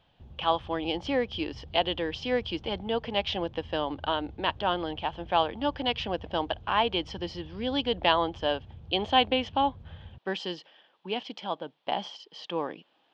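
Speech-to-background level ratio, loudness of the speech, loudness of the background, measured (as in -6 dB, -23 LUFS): 18.5 dB, -30.0 LUFS, -48.5 LUFS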